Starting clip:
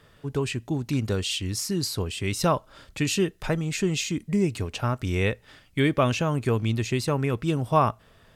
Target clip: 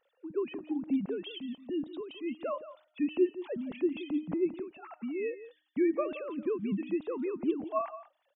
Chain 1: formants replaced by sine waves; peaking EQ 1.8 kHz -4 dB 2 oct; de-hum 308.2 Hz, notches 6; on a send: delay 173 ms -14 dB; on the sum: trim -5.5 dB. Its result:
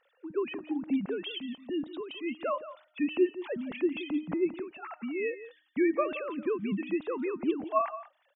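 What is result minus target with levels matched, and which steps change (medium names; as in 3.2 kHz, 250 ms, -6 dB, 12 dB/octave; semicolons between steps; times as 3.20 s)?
2 kHz band +6.0 dB
change: peaking EQ 1.8 kHz -13 dB 2 oct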